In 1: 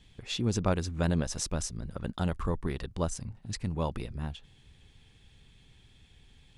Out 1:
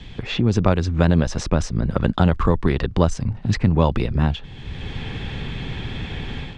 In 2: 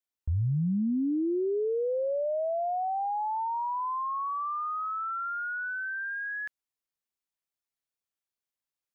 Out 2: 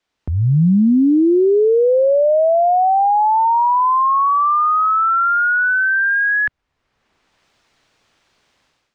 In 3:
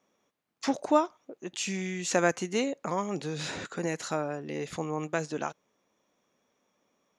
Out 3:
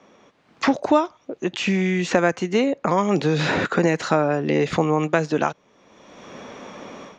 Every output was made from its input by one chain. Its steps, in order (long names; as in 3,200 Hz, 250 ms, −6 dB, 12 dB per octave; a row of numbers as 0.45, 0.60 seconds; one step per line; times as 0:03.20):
automatic gain control gain up to 16 dB
high-frequency loss of the air 140 metres
multiband upward and downward compressor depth 70%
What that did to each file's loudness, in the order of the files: +11.5, +16.5, +10.0 LU